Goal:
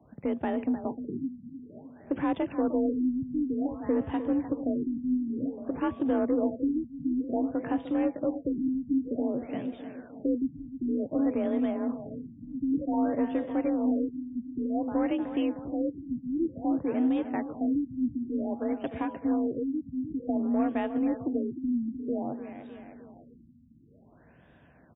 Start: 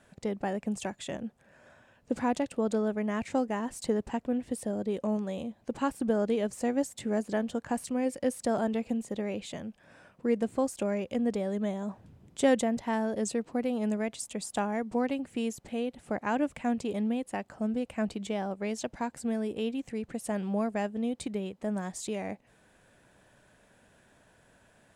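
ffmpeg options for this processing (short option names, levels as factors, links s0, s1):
-filter_complex "[0:a]asplit=2[s0][s1];[s1]alimiter=limit=0.0794:level=0:latency=1,volume=1.06[s2];[s0][s2]amix=inputs=2:normalize=0,lowshelf=f=270:g=8,bandreject=f=156.9:t=h:w=4,bandreject=f=313.8:t=h:w=4,bandreject=f=470.7:t=h:w=4,bandreject=f=627.6:t=h:w=4,bandreject=f=784.5:t=h:w=4,bandreject=f=941.4:t=h:w=4,bandreject=f=1098.3:t=h:w=4,afreqshift=40,aeval=exprs='0.355*(cos(1*acos(clip(val(0)/0.355,-1,1)))-cos(1*PI/2))+0.0158*(cos(5*acos(clip(val(0)/0.355,-1,1)))-cos(5*PI/2))':c=same,aecho=1:1:305|610|915|1220|1525|1830|2135:0.282|0.166|0.0981|0.0579|0.0342|0.0201|0.0119,afftfilt=real='re*lt(b*sr/1024,280*pow(3800/280,0.5+0.5*sin(2*PI*0.54*pts/sr)))':imag='im*lt(b*sr/1024,280*pow(3800/280,0.5+0.5*sin(2*PI*0.54*pts/sr)))':win_size=1024:overlap=0.75,volume=0.422"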